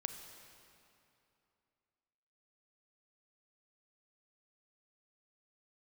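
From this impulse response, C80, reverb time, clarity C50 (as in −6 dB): 8.0 dB, 2.8 s, 7.0 dB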